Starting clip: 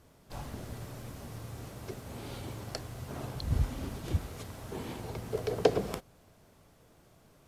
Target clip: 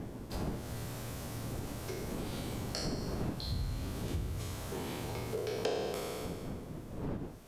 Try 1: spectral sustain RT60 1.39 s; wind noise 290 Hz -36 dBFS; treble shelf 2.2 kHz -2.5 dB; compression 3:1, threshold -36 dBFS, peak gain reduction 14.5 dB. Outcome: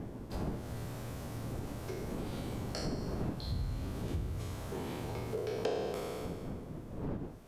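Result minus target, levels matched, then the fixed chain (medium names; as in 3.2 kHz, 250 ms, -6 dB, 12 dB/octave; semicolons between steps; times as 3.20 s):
4 kHz band -4.0 dB
spectral sustain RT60 1.39 s; wind noise 290 Hz -36 dBFS; treble shelf 2.2 kHz +4 dB; compression 3:1, threshold -36 dBFS, peak gain reduction 15 dB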